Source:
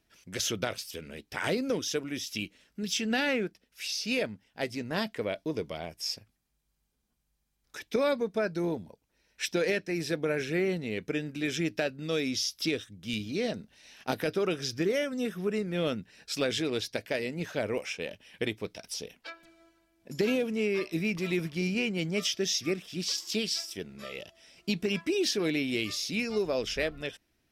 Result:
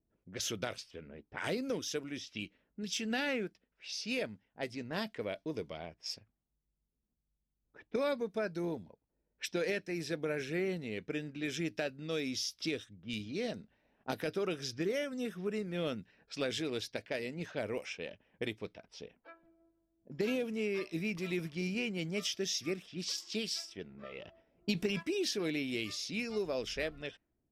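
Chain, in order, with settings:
0:23.90–0:25.03: transient designer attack +4 dB, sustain +8 dB
low-pass that shuts in the quiet parts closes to 470 Hz, open at −28.5 dBFS
level −6 dB

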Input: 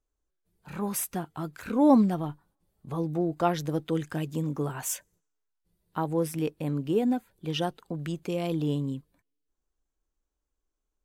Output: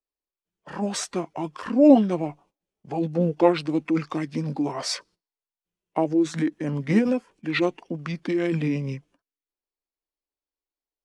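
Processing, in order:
noise gate −56 dBFS, range −15 dB
three-way crossover with the lows and the highs turned down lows −17 dB, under 270 Hz, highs −14 dB, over 7,600 Hz
formants moved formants −6 semitones
level +8.5 dB

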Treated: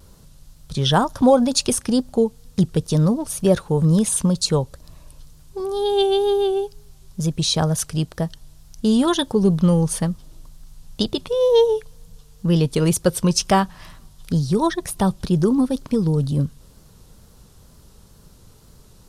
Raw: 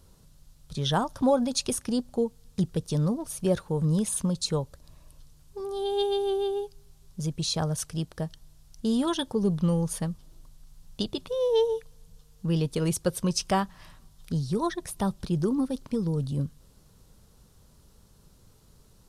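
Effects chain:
pitch vibrato 2.1 Hz 53 cents
level +8.5 dB

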